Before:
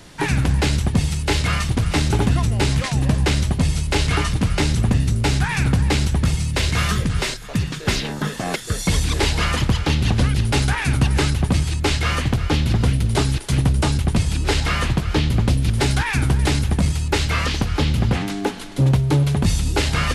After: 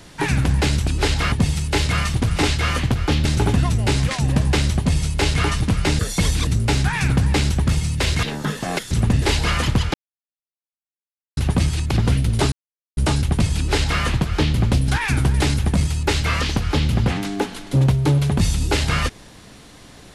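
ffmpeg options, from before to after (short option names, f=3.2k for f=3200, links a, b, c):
-filter_complex "[0:a]asplit=16[a][b][c][d][e][f][g][h][i][j][k][l][m][n][o][p];[a]atrim=end=0.872[q];[b]atrim=start=14.328:end=14.782[r];[c]atrim=start=0.868:end=1.982[s];[d]atrim=start=11.848:end=12.672[t];[e]atrim=start=1.978:end=4.722[u];[f]atrim=start=8.678:end=9.162[v];[g]atrim=start=5.028:end=6.792[w];[h]atrim=start=7.998:end=8.682[x];[i]atrim=start=4.718:end=5.032[y];[j]atrim=start=9.158:end=9.88,asetpts=PTS-STARTPTS,afade=t=out:st=0.718:d=0.004:c=hsin[z];[k]atrim=start=9.88:end=11.31,asetpts=PTS-STARTPTS,volume=0[aa];[l]atrim=start=11.31:end=11.852,asetpts=PTS-STARTPTS,afade=t=in:d=0.004:c=hsin[ab];[m]atrim=start=12.668:end=13.28,asetpts=PTS-STARTPTS,afade=t=out:st=0.608:d=0.004:c=hsin[ac];[n]atrim=start=13.28:end=13.73,asetpts=PTS-STARTPTS,volume=0[ad];[o]atrim=start=13.73:end=15.642,asetpts=PTS-STARTPTS,afade=t=in:d=0.004:c=hsin[ae];[p]atrim=start=15.928[af];[q][r]acrossfade=d=0.004:c1=hsin:c2=hsin[ag];[ag][s]acrossfade=d=0.004:c1=hsin:c2=hsin[ah];[ah][t]acrossfade=d=0.004:c1=hsin:c2=hsin[ai];[ai][u]acrossfade=d=0.004:c1=hsin:c2=hsin[aj];[aj][v]acrossfade=d=0.004:c1=hsin:c2=hsin[ak];[ak][w]acrossfade=d=0.004:c1=hsin:c2=hsin[al];[al][x]acrossfade=d=0.004:c1=hsin:c2=hsin[am];[am][y]acrossfade=d=0.004:c1=hsin:c2=hsin[an];[z][aa][ab]concat=n=3:v=0:a=1[ao];[an][ao]acrossfade=d=0.004:c1=hsin:c2=hsin[ap];[ac][ad][ae]concat=n=3:v=0:a=1[aq];[ap][aq]acrossfade=d=0.004:c1=hsin:c2=hsin[ar];[ar][af]acrossfade=d=0.004:c1=hsin:c2=hsin"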